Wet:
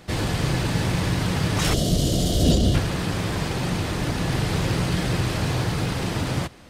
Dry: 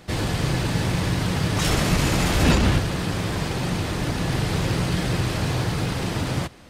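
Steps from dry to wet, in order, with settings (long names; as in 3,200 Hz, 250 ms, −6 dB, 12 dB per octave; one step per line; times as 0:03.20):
gain on a spectral selection 0:01.73–0:02.74, 740–2,800 Hz −17 dB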